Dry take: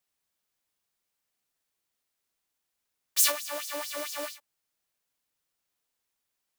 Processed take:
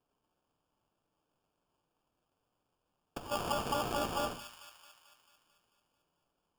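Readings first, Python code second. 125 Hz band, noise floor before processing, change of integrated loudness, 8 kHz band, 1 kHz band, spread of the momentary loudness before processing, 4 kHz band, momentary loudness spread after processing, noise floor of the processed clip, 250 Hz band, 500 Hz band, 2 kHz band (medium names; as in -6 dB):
no reading, -83 dBFS, -7.5 dB, -17.0 dB, +5.0 dB, 13 LU, -7.5 dB, 17 LU, -84 dBFS, +7.0 dB, +0.5 dB, -6.5 dB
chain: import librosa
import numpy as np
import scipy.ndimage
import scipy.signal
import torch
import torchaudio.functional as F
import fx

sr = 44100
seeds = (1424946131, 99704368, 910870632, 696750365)

p1 = fx.peak_eq(x, sr, hz=1100.0, db=14.0, octaves=0.2)
p2 = fx.over_compress(p1, sr, threshold_db=-30.0, ratio=-0.5)
p3 = fx.sample_hold(p2, sr, seeds[0], rate_hz=2000.0, jitter_pct=0)
p4 = p3 + fx.echo_wet_highpass(p3, sr, ms=221, feedback_pct=58, hz=1600.0, wet_db=-8.0, dry=0)
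p5 = fx.room_shoebox(p4, sr, seeds[1], volume_m3=380.0, walls='furnished', distance_m=0.38)
y = F.gain(torch.from_numpy(p5), -3.5).numpy()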